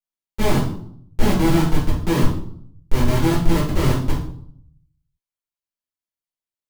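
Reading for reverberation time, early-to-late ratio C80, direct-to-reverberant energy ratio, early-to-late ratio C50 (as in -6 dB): 0.65 s, 9.5 dB, -8.0 dB, 4.5 dB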